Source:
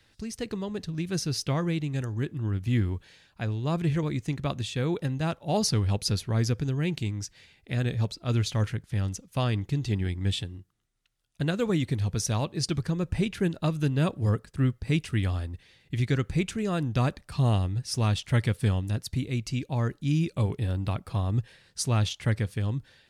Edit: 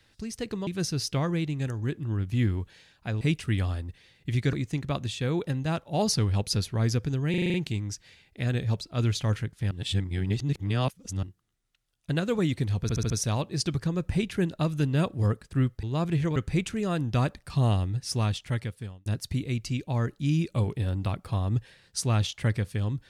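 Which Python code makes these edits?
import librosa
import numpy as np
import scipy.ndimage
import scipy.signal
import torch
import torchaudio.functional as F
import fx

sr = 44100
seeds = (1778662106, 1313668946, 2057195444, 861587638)

y = fx.edit(x, sr, fx.cut(start_s=0.67, length_s=0.34),
    fx.swap(start_s=3.55, length_s=0.53, other_s=14.86, other_length_s=1.32),
    fx.stutter(start_s=6.85, slice_s=0.04, count=7),
    fx.reverse_span(start_s=9.02, length_s=1.52),
    fx.stutter(start_s=12.13, slice_s=0.07, count=5),
    fx.fade_out_span(start_s=17.92, length_s=0.96), tone=tone)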